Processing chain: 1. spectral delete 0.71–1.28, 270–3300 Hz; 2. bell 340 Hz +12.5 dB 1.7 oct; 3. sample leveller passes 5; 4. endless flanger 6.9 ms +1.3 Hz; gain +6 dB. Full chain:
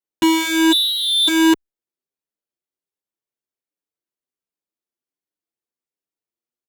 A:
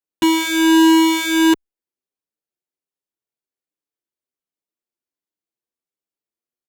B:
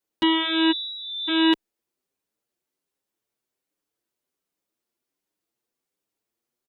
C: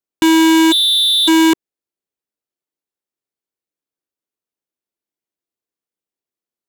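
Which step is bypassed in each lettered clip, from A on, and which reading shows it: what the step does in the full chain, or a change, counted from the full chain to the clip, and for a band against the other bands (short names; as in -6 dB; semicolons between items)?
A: 1, 4 kHz band -9.0 dB; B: 3, crest factor change +2.0 dB; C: 4, 2 kHz band -2.0 dB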